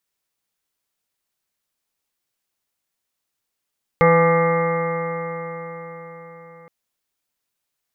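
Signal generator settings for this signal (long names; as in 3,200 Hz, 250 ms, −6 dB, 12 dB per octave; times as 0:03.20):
stiff-string partials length 2.67 s, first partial 166 Hz, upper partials −14/4.5/−15/−3.5/−18/−0.5/−18/−16/−18.5/−10/−5 dB, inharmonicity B 0.00087, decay 4.92 s, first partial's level −17 dB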